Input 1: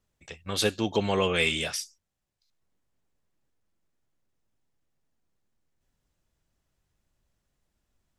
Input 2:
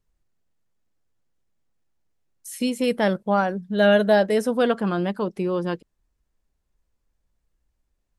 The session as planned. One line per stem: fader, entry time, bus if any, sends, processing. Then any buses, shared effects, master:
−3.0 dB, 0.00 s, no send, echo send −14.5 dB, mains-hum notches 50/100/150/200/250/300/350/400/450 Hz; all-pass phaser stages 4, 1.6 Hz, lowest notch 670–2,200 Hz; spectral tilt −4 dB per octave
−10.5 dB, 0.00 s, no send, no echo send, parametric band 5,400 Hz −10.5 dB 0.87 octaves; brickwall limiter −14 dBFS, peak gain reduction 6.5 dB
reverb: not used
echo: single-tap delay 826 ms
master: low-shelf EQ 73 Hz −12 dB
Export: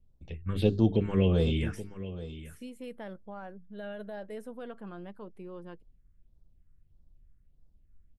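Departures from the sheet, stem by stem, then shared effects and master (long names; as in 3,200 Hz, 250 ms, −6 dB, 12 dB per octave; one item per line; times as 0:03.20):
stem 2 −10.5 dB → −19.5 dB
master: missing low-shelf EQ 73 Hz −12 dB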